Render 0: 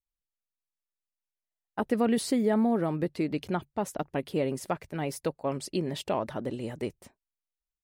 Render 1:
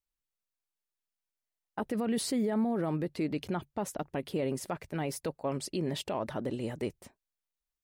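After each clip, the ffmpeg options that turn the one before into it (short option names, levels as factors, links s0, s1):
-af "alimiter=limit=0.0708:level=0:latency=1:release=40"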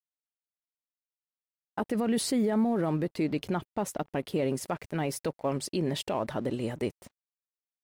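-af "aeval=exprs='sgn(val(0))*max(abs(val(0))-0.00112,0)':c=same,volume=1.5"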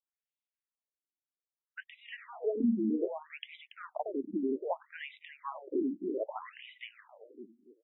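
-filter_complex "[0:a]acrossover=split=540|7600[s0][s1][s2];[s2]acrusher=bits=4:mix=0:aa=0.000001[s3];[s0][s1][s3]amix=inputs=3:normalize=0,asplit=2[s4][s5];[s5]adelay=283,lowpass=f=1700:p=1,volume=0.531,asplit=2[s6][s7];[s7]adelay=283,lowpass=f=1700:p=1,volume=0.31,asplit=2[s8][s9];[s9]adelay=283,lowpass=f=1700:p=1,volume=0.31,asplit=2[s10][s11];[s11]adelay=283,lowpass=f=1700:p=1,volume=0.31[s12];[s4][s6][s8][s10][s12]amix=inputs=5:normalize=0,afftfilt=real='re*between(b*sr/1024,260*pow(2800/260,0.5+0.5*sin(2*PI*0.63*pts/sr))/1.41,260*pow(2800/260,0.5+0.5*sin(2*PI*0.63*pts/sr))*1.41)':imag='im*between(b*sr/1024,260*pow(2800/260,0.5+0.5*sin(2*PI*0.63*pts/sr))/1.41,260*pow(2800/260,0.5+0.5*sin(2*PI*0.63*pts/sr))*1.41)':win_size=1024:overlap=0.75"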